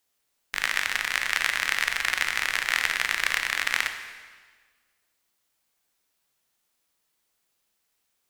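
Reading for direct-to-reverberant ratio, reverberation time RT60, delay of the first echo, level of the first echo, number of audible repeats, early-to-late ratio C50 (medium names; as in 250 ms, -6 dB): 6.0 dB, 1.5 s, no echo, no echo, no echo, 8.0 dB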